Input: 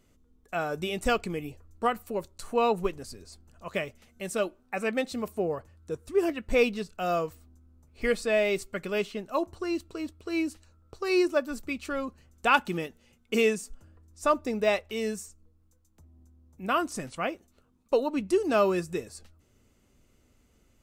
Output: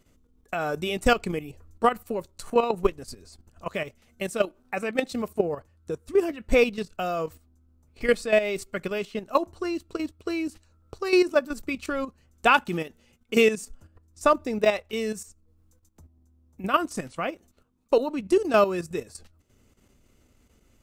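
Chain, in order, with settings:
transient designer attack +4 dB, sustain −1 dB
output level in coarse steps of 11 dB
level +5.5 dB

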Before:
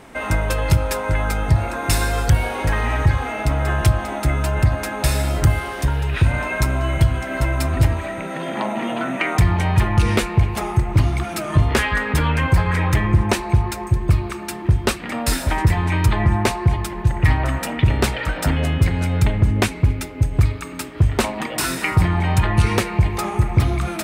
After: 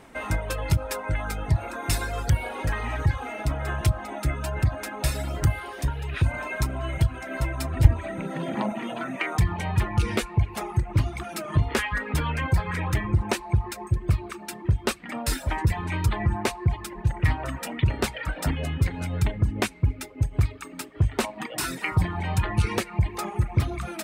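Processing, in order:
reverb reduction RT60 0.8 s
0:07.84–0:08.72: low-shelf EQ 300 Hz +11.5 dB
level −6 dB

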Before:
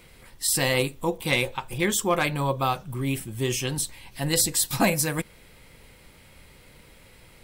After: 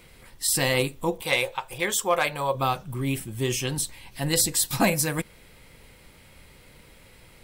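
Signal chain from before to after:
0:01.23–0:02.55: low shelf with overshoot 390 Hz −8.5 dB, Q 1.5

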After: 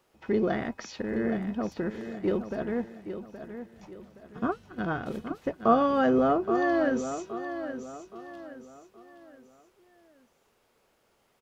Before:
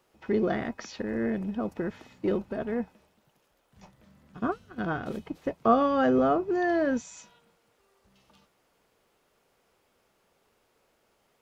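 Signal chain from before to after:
repeating echo 821 ms, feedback 37%, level −10 dB

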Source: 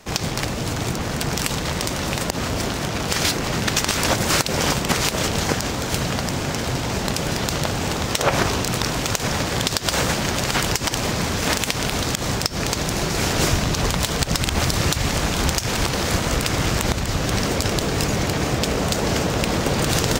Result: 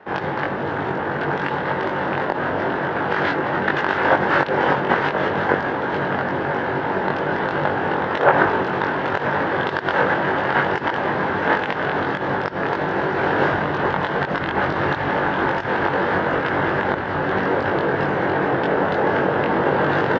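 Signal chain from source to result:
loudspeaker in its box 180–2,500 Hz, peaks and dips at 220 Hz −5 dB, 370 Hz +4 dB, 520 Hz +3 dB, 880 Hz +7 dB, 1,600 Hz +8 dB, 2,400 Hz −8 dB
double-tracking delay 21 ms −2 dB

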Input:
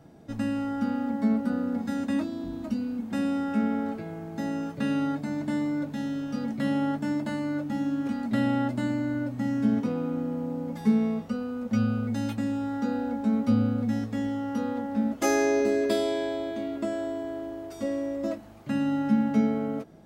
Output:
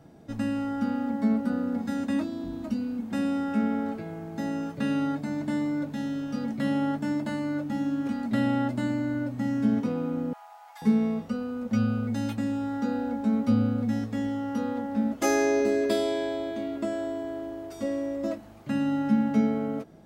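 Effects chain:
0:10.33–0:10.82: Butterworth high-pass 670 Hz 96 dB per octave

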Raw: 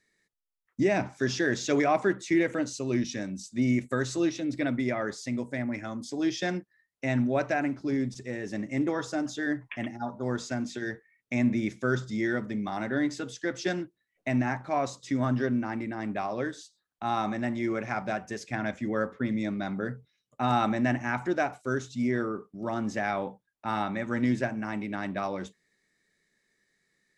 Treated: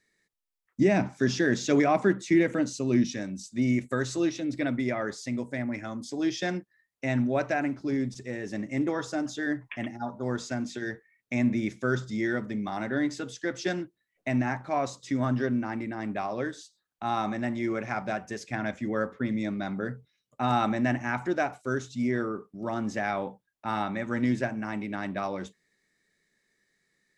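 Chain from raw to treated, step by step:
0:00.81–0:03.12: parametric band 200 Hz +7 dB 1.1 octaves

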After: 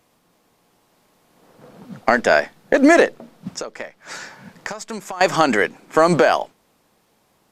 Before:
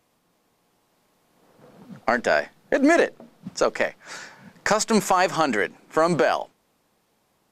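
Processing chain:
0:03.50–0:05.21: downward compressor 8 to 1, threshold −33 dBFS, peak gain reduction 18.5 dB
level +5.5 dB

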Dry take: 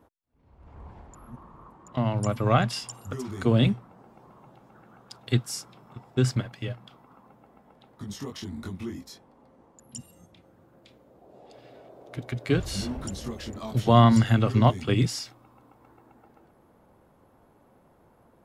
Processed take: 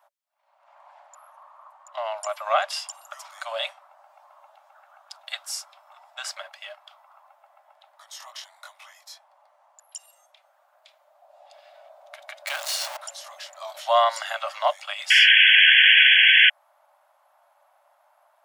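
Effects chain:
0:12.47–0:12.97: converter with a step at zero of −27 dBFS
0:15.10–0:16.50: sound drawn into the spectrogram noise 1,500–3,400 Hz −17 dBFS
Chebyshev high-pass filter 570 Hz, order 10
level +3 dB

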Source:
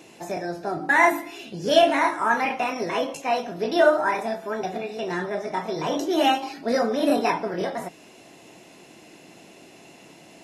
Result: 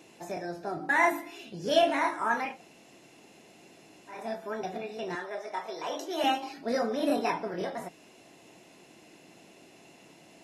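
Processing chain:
0:02.50–0:04.19: fill with room tone, crossfade 0.24 s
0:05.15–0:06.24: high-pass filter 470 Hz 12 dB per octave
level −6.5 dB

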